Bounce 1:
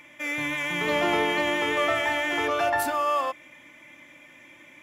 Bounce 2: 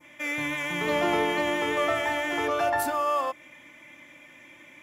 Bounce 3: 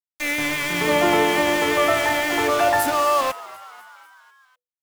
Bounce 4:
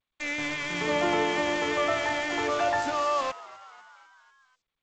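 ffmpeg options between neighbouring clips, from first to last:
-af "adynamicequalizer=threshold=0.0141:dfrequency=2700:dqfactor=0.72:tfrequency=2700:tqfactor=0.72:attack=5:release=100:ratio=0.375:range=2:mode=cutabove:tftype=bell"
-filter_complex "[0:a]aeval=exprs='val(0)*gte(abs(val(0)),0.0282)':c=same,asplit=6[s0][s1][s2][s3][s4][s5];[s1]adelay=248,afreqshift=98,volume=0.106[s6];[s2]adelay=496,afreqshift=196,volume=0.0646[s7];[s3]adelay=744,afreqshift=294,volume=0.0394[s8];[s4]adelay=992,afreqshift=392,volume=0.024[s9];[s5]adelay=1240,afreqshift=490,volume=0.0146[s10];[s0][s6][s7][s8][s9][s10]amix=inputs=6:normalize=0,volume=2.24"
-af "volume=0.422" -ar 16000 -c:a g722

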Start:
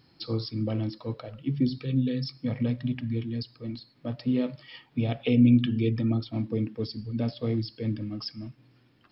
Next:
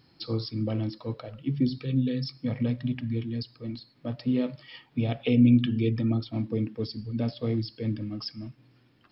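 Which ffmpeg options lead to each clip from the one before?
-af anull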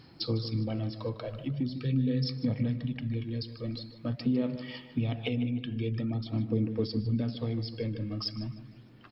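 -filter_complex "[0:a]acompressor=threshold=0.02:ratio=3,aphaser=in_gain=1:out_gain=1:delay=1.9:decay=0.38:speed=0.44:type=sinusoidal,asplit=2[s0][s1];[s1]adelay=152,lowpass=f=3100:p=1,volume=0.282,asplit=2[s2][s3];[s3]adelay=152,lowpass=f=3100:p=1,volume=0.46,asplit=2[s4][s5];[s5]adelay=152,lowpass=f=3100:p=1,volume=0.46,asplit=2[s6][s7];[s7]adelay=152,lowpass=f=3100:p=1,volume=0.46,asplit=2[s8][s9];[s9]adelay=152,lowpass=f=3100:p=1,volume=0.46[s10];[s0][s2][s4][s6][s8][s10]amix=inputs=6:normalize=0,volume=1.41"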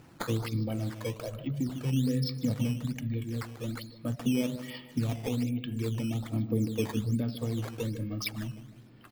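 -af "acrusher=samples=9:mix=1:aa=0.000001:lfo=1:lforange=14.4:lforate=1.2"

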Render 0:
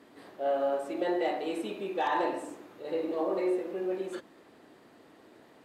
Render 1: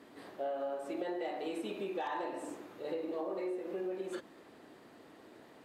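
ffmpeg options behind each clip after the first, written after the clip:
-af "acompressor=threshold=0.0178:ratio=6"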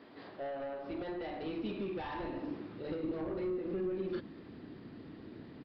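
-af "aresample=11025,asoftclip=type=tanh:threshold=0.0178,aresample=44100,asubboost=boost=8.5:cutoff=230,volume=1.12"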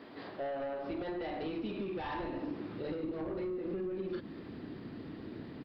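-af "acompressor=threshold=0.0112:ratio=6,volume=1.68"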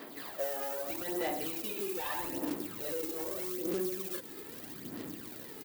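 -af "acrusher=bits=4:mode=log:mix=0:aa=0.000001,aemphasis=mode=production:type=bsi,aphaser=in_gain=1:out_gain=1:delay=2.4:decay=0.53:speed=0.8:type=sinusoidal"

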